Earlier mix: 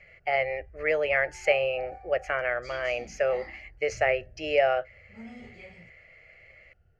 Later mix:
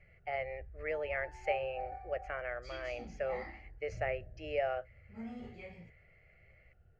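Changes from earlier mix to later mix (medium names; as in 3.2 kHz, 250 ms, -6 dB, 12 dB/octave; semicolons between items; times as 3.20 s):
speech -10.5 dB; master: add treble shelf 3.9 kHz -11 dB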